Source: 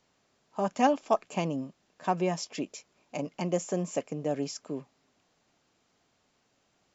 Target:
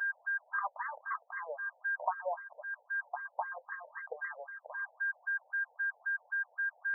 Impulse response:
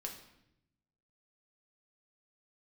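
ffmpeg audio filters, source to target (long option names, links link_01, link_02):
-af "tiltshelf=frequency=690:gain=-10,aeval=exprs='val(0)+0.00794*sin(2*PI*1600*n/s)':channel_layout=same,aeval=exprs='0.376*sin(PI/2*2.82*val(0)/0.376)':channel_layout=same,acompressor=threshold=-28dB:ratio=8,afftfilt=real='re*between(b*sr/1024,640*pow(1500/640,0.5+0.5*sin(2*PI*3.8*pts/sr))/1.41,640*pow(1500/640,0.5+0.5*sin(2*PI*3.8*pts/sr))*1.41)':imag='im*between(b*sr/1024,640*pow(1500/640,0.5+0.5*sin(2*PI*3.8*pts/sr))/1.41,640*pow(1500/640,0.5+0.5*sin(2*PI*3.8*pts/sr))*1.41)':win_size=1024:overlap=0.75"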